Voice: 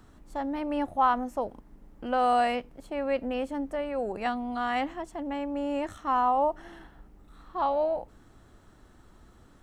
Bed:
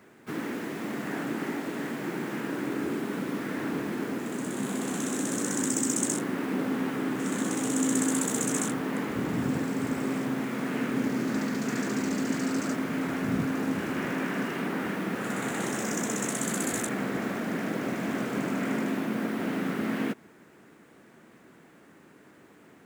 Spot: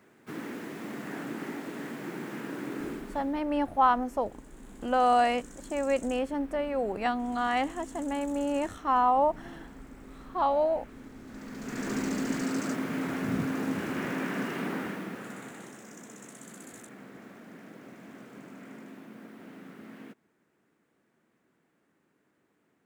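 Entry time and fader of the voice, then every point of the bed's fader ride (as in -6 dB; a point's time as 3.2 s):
2.80 s, +1.0 dB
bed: 2.88 s -5 dB
3.43 s -20 dB
11.2 s -20 dB
11.92 s -2 dB
14.73 s -2 dB
15.81 s -17.5 dB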